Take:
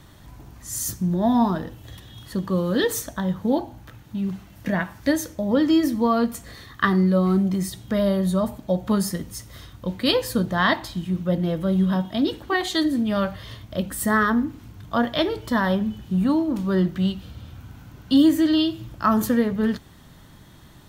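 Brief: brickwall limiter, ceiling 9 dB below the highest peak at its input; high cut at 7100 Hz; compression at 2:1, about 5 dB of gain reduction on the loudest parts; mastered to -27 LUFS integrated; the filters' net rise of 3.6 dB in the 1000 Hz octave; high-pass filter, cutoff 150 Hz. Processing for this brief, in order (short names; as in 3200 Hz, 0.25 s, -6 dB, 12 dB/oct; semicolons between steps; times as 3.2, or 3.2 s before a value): HPF 150 Hz; LPF 7100 Hz; bell 1000 Hz +4.5 dB; compressor 2:1, threshold -21 dBFS; gain -0.5 dB; limiter -16 dBFS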